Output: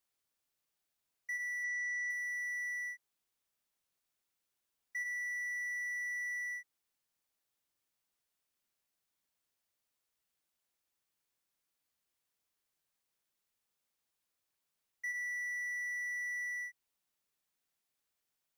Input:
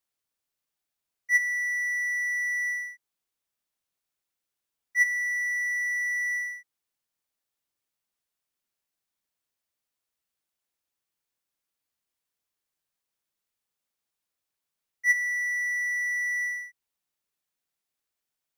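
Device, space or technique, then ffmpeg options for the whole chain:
de-esser from a sidechain: -filter_complex "[0:a]asplit=3[a][b][c];[a]afade=t=out:st=1.63:d=0.02[d];[b]lowpass=f=8.1k:w=0.5412,lowpass=f=8.1k:w=1.3066,afade=t=in:st=1.63:d=0.02,afade=t=out:st=2.09:d=0.02[e];[c]afade=t=in:st=2.09:d=0.02[f];[d][e][f]amix=inputs=3:normalize=0,asplit=2[g][h];[h]highpass=f=5.2k:w=0.5412,highpass=f=5.2k:w=1.3066,apad=whole_len=819361[i];[g][i]sidechaincompress=threshold=-56dB:ratio=8:attack=4.8:release=43"

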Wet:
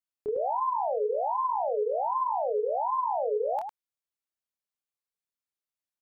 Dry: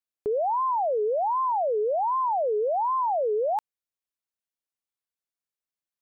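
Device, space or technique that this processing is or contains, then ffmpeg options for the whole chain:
slapback doubling: -filter_complex "[0:a]asplit=3[a][b][c];[b]adelay=26,volume=-3dB[d];[c]adelay=104,volume=-5.5dB[e];[a][d][e]amix=inputs=3:normalize=0,volume=-6dB"

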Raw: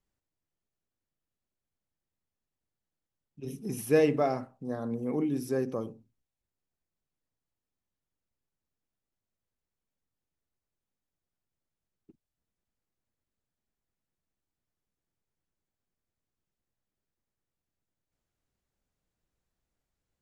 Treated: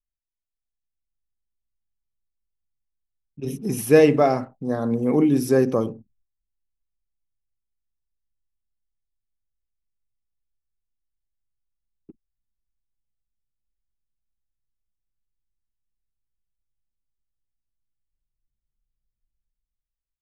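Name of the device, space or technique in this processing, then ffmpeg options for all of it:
voice memo with heavy noise removal: -af "anlmdn=0.0001,dynaudnorm=f=150:g=11:m=12dB"

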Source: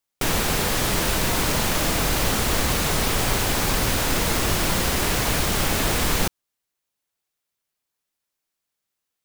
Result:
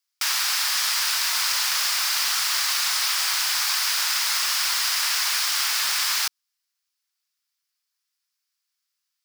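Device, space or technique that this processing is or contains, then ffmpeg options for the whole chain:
headphones lying on a table: -af "highpass=f=1.1k:w=0.5412,highpass=f=1.1k:w=1.3066,equalizer=f=5k:t=o:w=0.51:g=9"

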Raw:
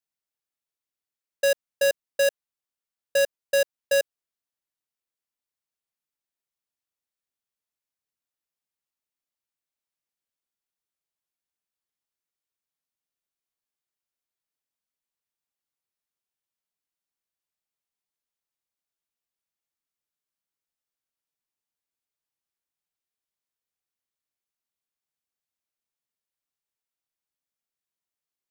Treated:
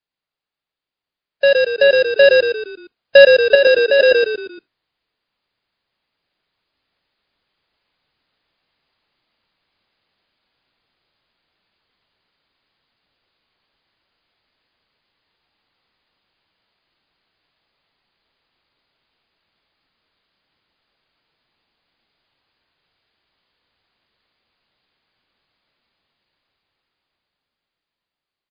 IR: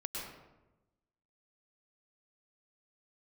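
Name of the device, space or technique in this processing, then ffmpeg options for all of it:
low-bitrate web radio: -filter_complex "[0:a]asettb=1/sr,asplit=3[a][b][c];[a]atrim=end=3.554[d];[b]atrim=start=3.55:end=4,asetpts=PTS-STARTPTS,afade=t=in:d=0.004:c=qsin,afade=t=out:st=0.446:d=0.004:c=qsin,highpass=f=210:w=0.5412,highpass=f=210:w=1.3066[e];[c]atrim=start=3.996[f];[d][e]acrossfade=d=0.004:c1=hsin:c2=qsin[g];[g][f]acrossfade=d=0.004:c1=qsin:c2=hsin,asplit=6[h][i][j][k][l][m];[i]adelay=116,afreqshift=-41,volume=-3.5dB[n];[j]adelay=232,afreqshift=-82,volume=-11dB[o];[k]adelay=348,afreqshift=-123,volume=-18.6dB[p];[l]adelay=464,afreqshift=-164,volume=-26.1dB[q];[m]adelay=580,afreqshift=-205,volume=-33.6dB[r];[h][n][o][p][q][r]amix=inputs=6:normalize=0,dynaudnorm=f=310:g=17:m=16dB,alimiter=limit=-10.5dB:level=0:latency=1:release=19,volume=7.5dB" -ar 11025 -c:a libmp3lame -b:a 24k

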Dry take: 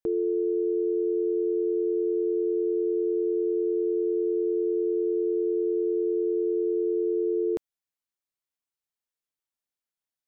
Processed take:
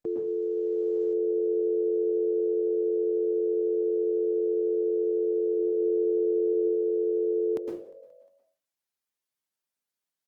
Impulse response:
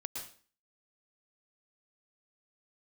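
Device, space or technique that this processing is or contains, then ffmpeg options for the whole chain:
far-field microphone of a smart speaker: -filter_complex "[0:a]asettb=1/sr,asplit=3[a][b][c];[a]atrim=end=1.294[d];[b]atrim=start=1.29:end=2.29,asetpts=PTS-STARTPTS,afade=t=in:d=0.004:c=qsin,afade=t=out:st=0.996:d=0.004:c=qsin,aemphasis=mode=reproduction:type=cd[e];[c]atrim=start=2.286[f];[d][e]acrossfade=d=0.004:c1=hsin:c2=qsin[g];[g][f]acrossfade=d=0.004:c1=qsin:c2=hsin,asplit=5[h][i][j][k][l];[i]adelay=177,afreqshift=52,volume=-23dB[m];[j]adelay=354,afreqshift=104,volume=-27.3dB[n];[k]adelay=531,afreqshift=156,volume=-31.6dB[o];[l]adelay=708,afreqshift=208,volume=-35.9dB[p];[h][m][n][o][p]amix=inputs=5:normalize=0,asplit=3[q][r][s];[q]afade=t=out:st=5.58:d=0.02[t];[r]bass=f=250:g=9,treble=f=4k:g=-8,afade=t=in:st=5.58:d=0.02,afade=t=out:st=6.53:d=0.02[u];[s]afade=t=in:st=6.53:d=0.02[v];[t][u][v]amix=inputs=3:normalize=0[w];[1:a]atrim=start_sample=2205[x];[w][x]afir=irnorm=-1:irlink=0,highpass=110,dynaudnorm=f=510:g=3:m=3dB" -ar 48000 -c:a libopus -b:a 20k

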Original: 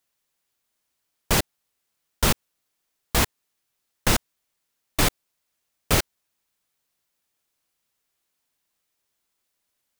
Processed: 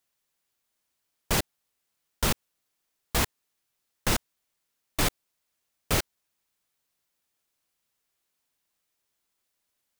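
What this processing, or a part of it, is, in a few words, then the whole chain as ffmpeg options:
clipper into limiter: -af "asoftclip=type=hard:threshold=-9dB,alimiter=limit=-12.5dB:level=0:latency=1:release=15,volume=-2dB"

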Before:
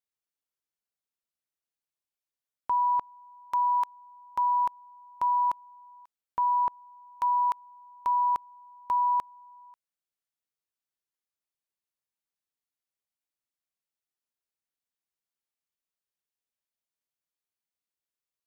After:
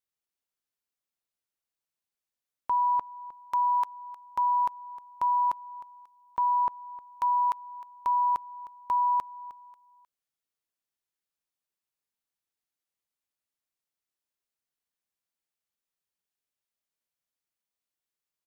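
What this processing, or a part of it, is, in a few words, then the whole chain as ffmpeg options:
ducked delay: -filter_complex "[0:a]asplit=3[a][b][c];[b]adelay=309,volume=-7.5dB[d];[c]apad=whole_len=827934[e];[d][e]sidechaincompress=threshold=-40dB:ratio=10:attack=16:release=671[f];[a][f]amix=inputs=2:normalize=0"

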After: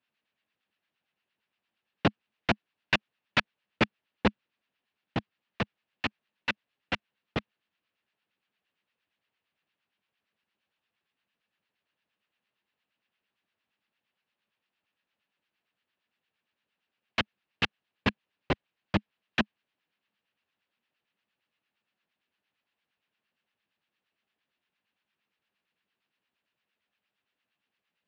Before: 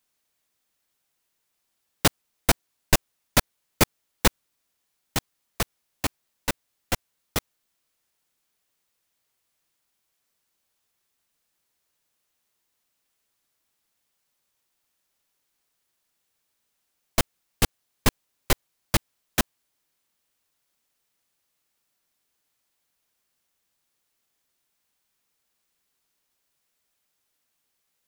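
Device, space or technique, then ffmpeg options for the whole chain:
guitar amplifier with harmonic tremolo: -filter_complex "[0:a]acrossover=split=1000[a][b];[a]aeval=exprs='val(0)*(1-0.7/2+0.7/2*cos(2*PI*8.7*n/s))':c=same[c];[b]aeval=exprs='val(0)*(1-0.7/2-0.7/2*cos(2*PI*8.7*n/s))':c=same[d];[c][d]amix=inputs=2:normalize=0,asoftclip=type=tanh:threshold=-11dB,highpass=94,equalizer=f=210:t=q:w=4:g=6,equalizer=f=1.7k:t=q:w=4:g=4,equalizer=f=2.7k:t=q:w=4:g=6,lowpass=f=3.8k:w=0.5412,lowpass=f=3.8k:w=1.3066"

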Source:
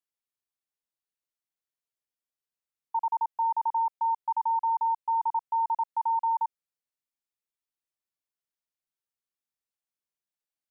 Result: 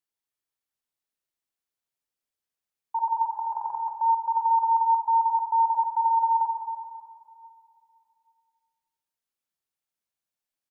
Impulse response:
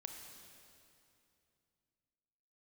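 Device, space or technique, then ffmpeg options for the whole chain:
cave: -filter_complex "[0:a]aecho=1:1:380:0.237[a];[1:a]atrim=start_sample=2205[b];[a][b]afir=irnorm=-1:irlink=0,asplit=3[c][d][e];[c]afade=t=out:st=3.3:d=0.02[f];[d]aecho=1:1:4.9:0.72,afade=t=in:st=3.3:d=0.02,afade=t=out:st=3.96:d=0.02[g];[e]afade=t=in:st=3.96:d=0.02[h];[f][g][h]amix=inputs=3:normalize=0,volume=6dB"

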